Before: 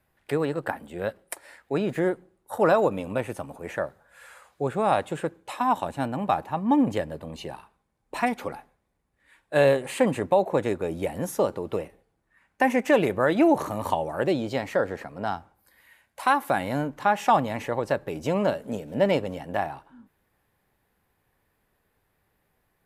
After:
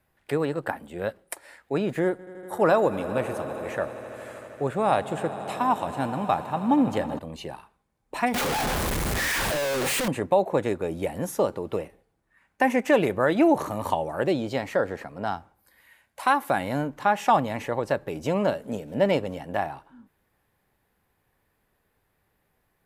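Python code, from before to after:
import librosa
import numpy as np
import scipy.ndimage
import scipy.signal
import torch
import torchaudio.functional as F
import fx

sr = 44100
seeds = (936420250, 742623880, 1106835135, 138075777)

y = fx.echo_swell(x, sr, ms=80, loudest=5, wet_db=-18, at=(2.03, 7.19))
y = fx.clip_1bit(y, sr, at=(8.34, 10.08))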